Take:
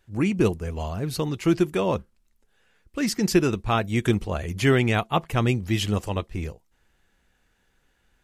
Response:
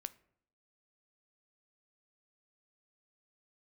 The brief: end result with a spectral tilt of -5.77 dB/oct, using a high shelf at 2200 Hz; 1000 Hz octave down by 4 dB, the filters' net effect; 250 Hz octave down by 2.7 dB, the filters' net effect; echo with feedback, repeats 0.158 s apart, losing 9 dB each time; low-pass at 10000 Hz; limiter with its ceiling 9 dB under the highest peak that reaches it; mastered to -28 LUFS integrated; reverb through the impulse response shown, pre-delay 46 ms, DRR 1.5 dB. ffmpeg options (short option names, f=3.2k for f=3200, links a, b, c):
-filter_complex "[0:a]lowpass=10k,equalizer=f=250:t=o:g=-3.5,equalizer=f=1k:t=o:g=-4.5,highshelf=f=2.2k:g=-3.5,alimiter=limit=-18dB:level=0:latency=1,aecho=1:1:158|316|474|632:0.355|0.124|0.0435|0.0152,asplit=2[a][b];[1:a]atrim=start_sample=2205,adelay=46[c];[b][c]afir=irnorm=-1:irlink=0,volume=2dB[d];[a][d]amix=inputs=2:normalize=0,volume=-1dB"